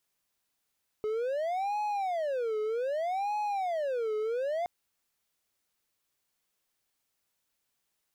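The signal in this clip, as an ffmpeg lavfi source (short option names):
-f lavfi -i "aevalsrc='0.0473*(1-4*abs(mod((634*t-207/(2*PI*0.64)*sin(2*PI*0.64*t))+0.25,1)-0.5))':d=3.62:s=44100"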